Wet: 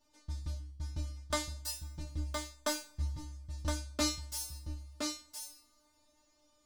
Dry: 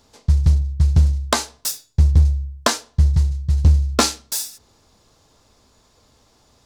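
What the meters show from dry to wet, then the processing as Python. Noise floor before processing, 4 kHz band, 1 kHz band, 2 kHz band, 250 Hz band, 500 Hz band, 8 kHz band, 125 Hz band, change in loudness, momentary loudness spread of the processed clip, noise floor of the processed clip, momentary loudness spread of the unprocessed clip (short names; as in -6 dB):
-58 dBFS, -13.0 dB, -16.5 dB, -13.5 dB, -13.0 dB, -12.5 dB, -13.5 dB, -24.0 dB, -20.0 dB, 12 LU, -71 dBFS, 9 LU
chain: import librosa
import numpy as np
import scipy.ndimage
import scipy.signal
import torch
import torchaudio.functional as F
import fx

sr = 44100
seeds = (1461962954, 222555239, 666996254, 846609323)

p1 = fx.comb_fb(x, sr, f0_hz=300.0, decay_s=0.31, harmonics='all', damping=0.0, mix_pct=100)
p2 = p1 + fx.echo_single(p1, sr, ms=1016, db=-5.0, dry=0)
y = fx.rev_double_slope(p2, sr, seeds[0], early_s=0.55, late_s=3.3, knee_db=-19, drr_db=17.5)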